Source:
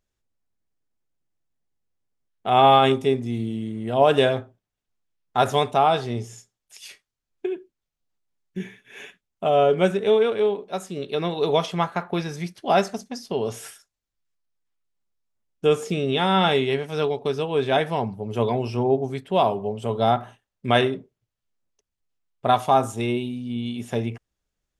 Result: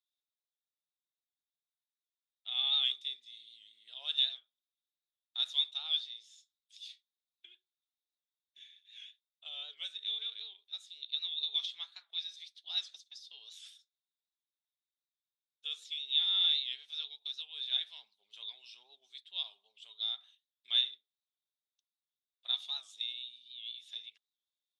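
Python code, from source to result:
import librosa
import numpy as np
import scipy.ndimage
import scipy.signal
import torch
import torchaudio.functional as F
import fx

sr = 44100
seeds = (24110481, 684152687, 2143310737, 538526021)

y = fx.ladder_bandpass(x, sr, hz=3800.0, resonance_pct=85)
y = fx.record_warp(y, sr, rpm=78.0, depth_cents=100.0)
y = y * librosa.db_to_amplitude(-2.0)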